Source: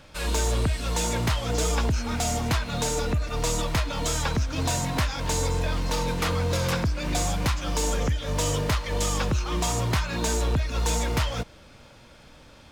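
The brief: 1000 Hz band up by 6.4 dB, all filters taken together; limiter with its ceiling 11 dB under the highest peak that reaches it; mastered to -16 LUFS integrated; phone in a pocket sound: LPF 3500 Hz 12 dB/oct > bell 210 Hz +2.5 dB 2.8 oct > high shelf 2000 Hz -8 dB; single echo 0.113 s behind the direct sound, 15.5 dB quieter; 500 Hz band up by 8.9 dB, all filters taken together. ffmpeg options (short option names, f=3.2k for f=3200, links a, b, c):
-af "equalizer=f=500:t=o:g=7.5,equalizer=f=1k:t=o:g=6.5,alimiter=limit=-20.5dB:level=0:latency=1,lowpass=3.5k,equalizer=f=210:t=o:w=2.8:g=2.5,highshelf=f=2k:g=-8,aecho=1:1:113:0.168,volume=12.5dB"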